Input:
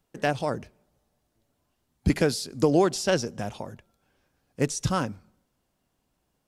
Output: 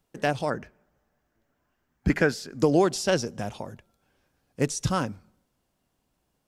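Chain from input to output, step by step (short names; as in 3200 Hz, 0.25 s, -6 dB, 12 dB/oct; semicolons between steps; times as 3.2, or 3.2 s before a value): 0.5–2.62 fifteen-band EQ 100 Hz -5 dB, 1600 Hz +9 dB, 4000 Hz -7 dB, 10000 Hz -12 dB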